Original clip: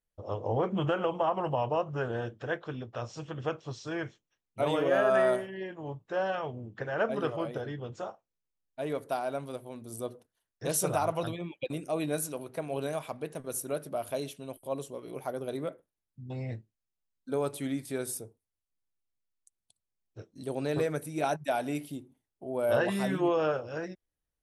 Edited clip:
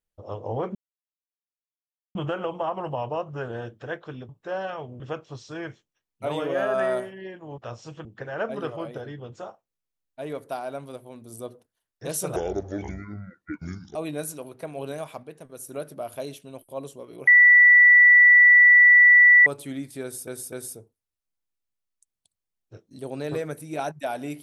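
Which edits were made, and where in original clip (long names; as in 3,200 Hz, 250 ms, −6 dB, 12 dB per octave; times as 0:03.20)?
0:00.75: splice in silence 1.40 s
0:02.89–0:03.36: swap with 0:05.94–0:06.65
0:10.96–0:11.90: play speed 59%
0:13.18–0:13.63: clip gain −5 dB
0:15.22–0:17.41: beep over 1,960 Hz −10 dBFS
0:17.97–0:18.22: repeat, 3 plays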